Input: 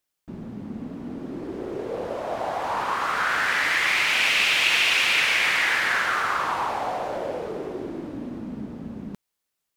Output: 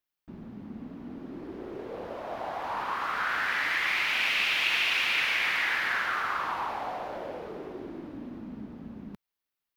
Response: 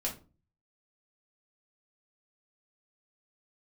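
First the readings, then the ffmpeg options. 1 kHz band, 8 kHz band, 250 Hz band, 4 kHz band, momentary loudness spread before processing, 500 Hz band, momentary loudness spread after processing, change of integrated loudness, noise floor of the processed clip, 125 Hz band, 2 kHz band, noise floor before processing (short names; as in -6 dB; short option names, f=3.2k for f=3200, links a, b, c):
-6.0 dB, -12.5 dB, -7.0 dB, -6.5 dB, 18 LU, -8.5 dB, 18 LU, -5.5 dB, under -85 dBFS, n/a, -5.5 dB, -81 dBFS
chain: -af "equalizer=f=125:t=o:w=1:g=-4,equalizer=f=500:t=o:w=1:g=-4,equalizer=f=8k:t=o:w=1:g=-10,volume=-5dB"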